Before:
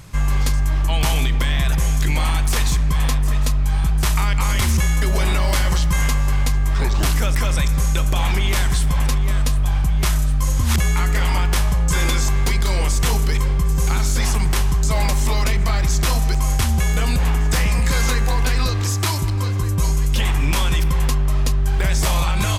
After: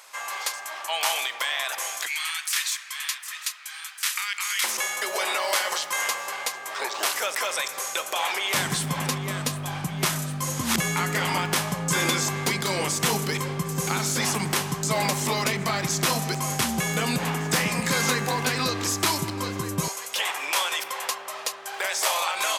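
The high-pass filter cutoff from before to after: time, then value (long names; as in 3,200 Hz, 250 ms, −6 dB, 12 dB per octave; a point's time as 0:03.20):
high-pass filter 24 dB per octave
620 Hz
from 0:02.07 1,500 Hz
from 0:04.64 480 Hz
from 0:08.54 160 Hz
from 0:19.88 530 Hz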